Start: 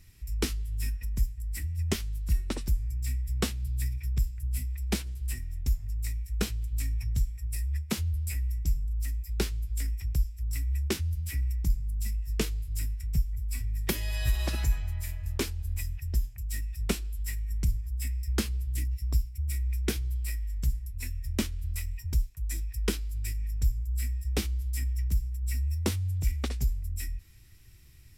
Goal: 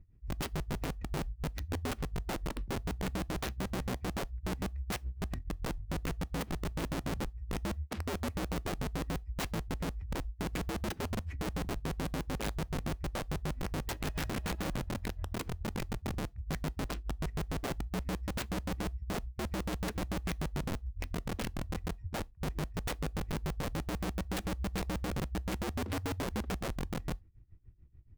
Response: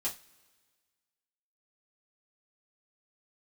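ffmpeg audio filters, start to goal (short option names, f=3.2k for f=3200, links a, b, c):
-filter_complex "[0:a]tremolo=f=6.9:d=0.87,adynamicsmooth=sensitivity=7.5:basefreq=620,aeval=exprs='(mod(33.5*val(0)+1,2)-1)/33.5':c=same,asplit=2[a][b];[1:a]atrim=start_sample=2205,afade=t=out:st=0.14:d=0.01,atrim=end_sample=6615[c];[b][c]afir=irnorm=-1:irlink=0,volume=-23dB[d];[a][d]amix=inputs=2:normalize=0"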